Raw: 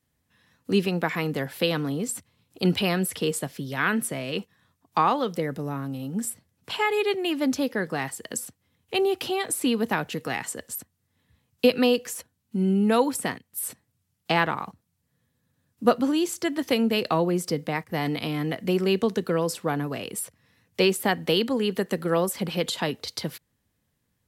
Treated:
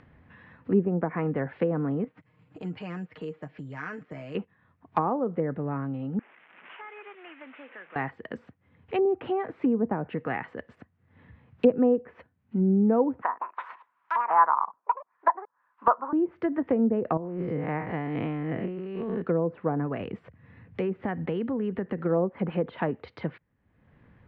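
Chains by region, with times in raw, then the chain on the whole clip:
2.04–4.35 comb 6.5 ms, depth 66% + compressor 2:1, threshold -43 dBFS + careless resampling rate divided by 6×, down filtered, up zero stuff
6.19–7.96 delta modulation 16 kbps, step -31.5 dBFS + HPF 170 Hz 24 dB/oct + differentiator
13.22–16.13 bell 1400 Hz +6.5 dB 0.78 oct + echoes that change speed 0.174 s, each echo +6 st, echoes 2, each echo -6 dB + resonant high-pass 1000 Hz, resonance Q 7.4
17.17–19.22 time blur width 0.138 s + negative-ratio compressor -31 dBFS
20–21.98 low shelf 220 Hz +10.5 dB + compressor 2.5:1, threshold -29 dBFS
whole clip: LPF 2200 Hz 24 dB/oct; treble ducked by the level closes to 670 Hz, closed at -21 dBFS; upward compressor, threshold -40 dBFS

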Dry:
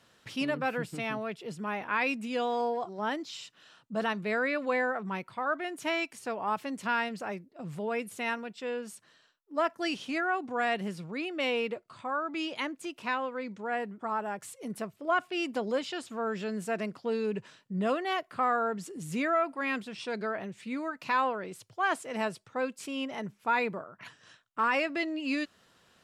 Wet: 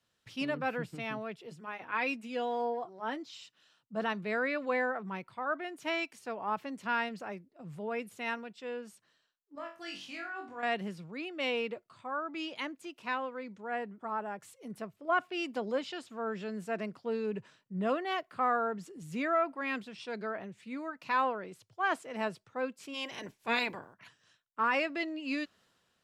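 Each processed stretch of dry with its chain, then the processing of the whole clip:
1.46–3.41 HPF 55 Hz + notch comb 200 Hz
9.55–10.63 bell 310 Hz -7 dB 2.7 oct + compressor 10:1, threshold -34 dBFS + flutter echo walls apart 3.6 m, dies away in 0.36 s
22.93–23.93 spectral limiter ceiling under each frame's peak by 20 dB + notch 1300 Hz, Q 5.3
whole clip: dynamic EQ 9600 Hz, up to -6 dB, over -57 dBFS, Q 0.9; three-band expander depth 40%; gain -3 dB

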